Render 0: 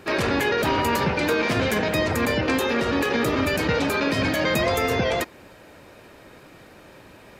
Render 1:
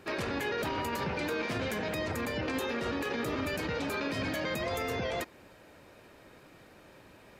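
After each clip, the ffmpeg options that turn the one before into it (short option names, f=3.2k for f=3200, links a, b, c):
-af "alimiter=limit=-16.5dB:level=0:latency=1:release=68,volume=-8dB"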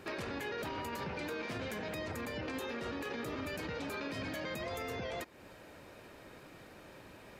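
-af "acompressor=threshold=-45dB:ratio=2,volume=1.5dB"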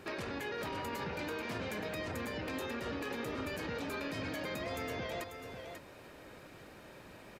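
-af "aecho=1:1:541:0.422"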